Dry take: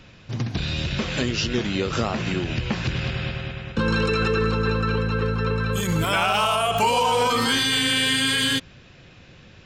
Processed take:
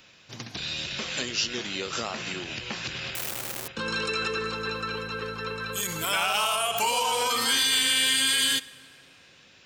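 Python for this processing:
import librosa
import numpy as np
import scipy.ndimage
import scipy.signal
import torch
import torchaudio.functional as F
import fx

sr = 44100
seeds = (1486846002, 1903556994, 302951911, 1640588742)

y = fx.high_shelf(x, sr, hz=8400.0, db=-5.0)
y = fx.rev_plate(y, sr, seeds[0], rt60_s=3.0, hf_ratio=0.55, predelay_ms=0, drr_db=18.5)
y = fx.schmitt(y, sr, flips_db=-36.5, at=(3.15, 3.68))
y = fx.riaa(y, sr, side='recording')
y = F.gain(torch.from_numpy(y), -6.0).numpy()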